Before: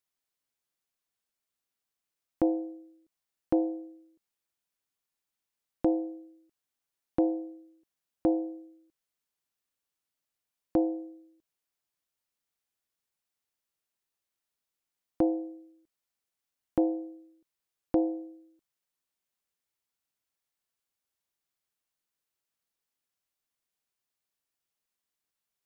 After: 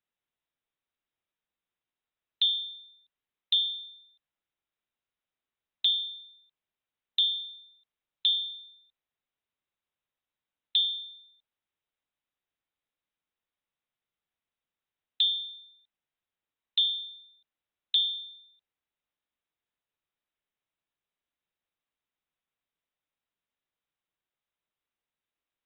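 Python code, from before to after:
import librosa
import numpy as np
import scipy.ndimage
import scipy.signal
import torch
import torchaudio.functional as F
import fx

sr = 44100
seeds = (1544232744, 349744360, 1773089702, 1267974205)

y = fx.freq_invert(x, sr, carrier_hz=3900)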